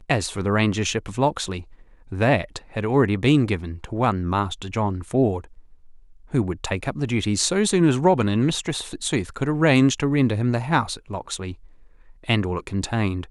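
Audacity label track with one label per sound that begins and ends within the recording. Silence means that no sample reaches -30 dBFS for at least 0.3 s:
2.120000	5.400000	sound
6.340000	11.520000	sound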